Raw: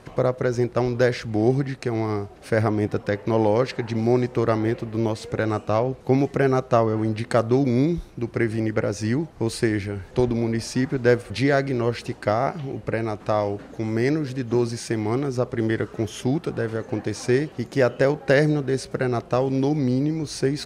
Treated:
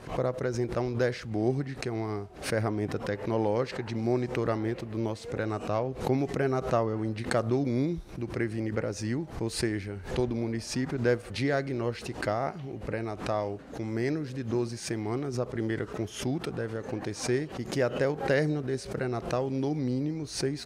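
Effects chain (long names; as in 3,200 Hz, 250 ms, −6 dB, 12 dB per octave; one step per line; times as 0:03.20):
background raised ahead of every attack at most 120 dB per second
level −8 dB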